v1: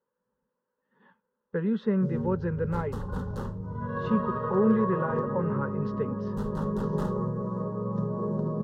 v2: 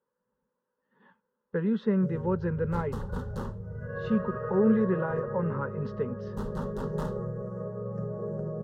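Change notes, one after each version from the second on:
first sound: add static phaser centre 1 kHz, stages 6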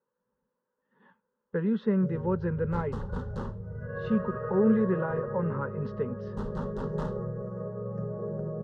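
master: add distance through air 79 m

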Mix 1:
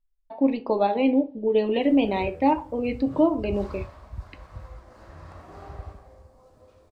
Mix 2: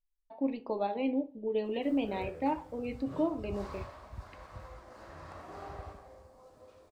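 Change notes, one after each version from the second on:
speech -10.5 dB; background: add bass shelf 160 Hz -10.5 dB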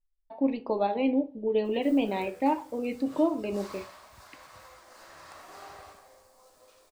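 speech +5.5 dB; background: add tilt EQ +4 dB/octave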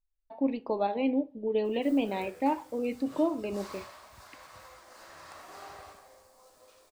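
speech: send -7.5 dB

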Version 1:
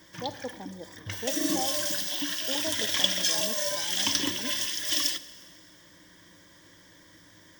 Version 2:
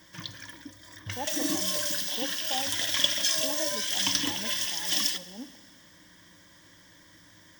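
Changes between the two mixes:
speech: entry +0.95 s; master: add peaking EQ 420 Hz -6 dB 0.7 oct

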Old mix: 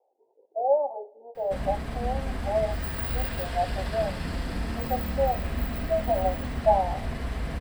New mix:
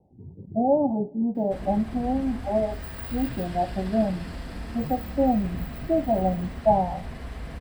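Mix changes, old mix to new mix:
speech: remove elliptic high-pass 480 Hz, stop band 60 dB; background -5.0 dB

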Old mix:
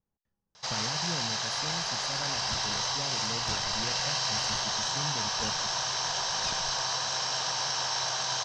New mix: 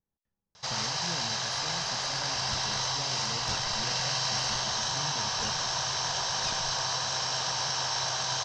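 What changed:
speech -3.5 dB; first sound: add bass shelf 140 Hz +9 dB

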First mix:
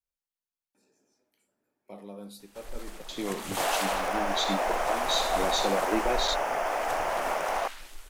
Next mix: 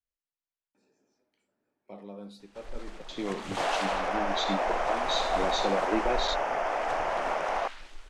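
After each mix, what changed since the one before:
master: add distance through air 100 m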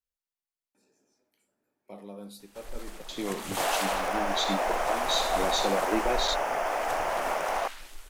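master: remove distance through air 100 m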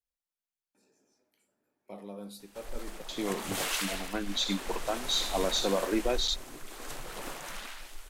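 second sound: muted

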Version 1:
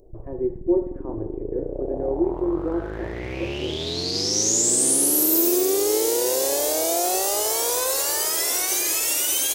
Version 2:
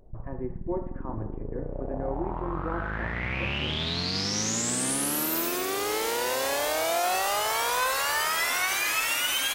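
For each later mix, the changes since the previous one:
master: add FFT filter 100 Hz 0 dB, 220 Hz +5 dB, 350 Hz -13 dB, 1.3 kHz +9 dB, 2.6 kHz +5 dB, 6.5 kHz -10 dB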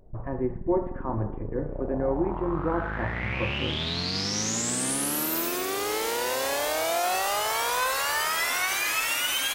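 speech +6.5 dB

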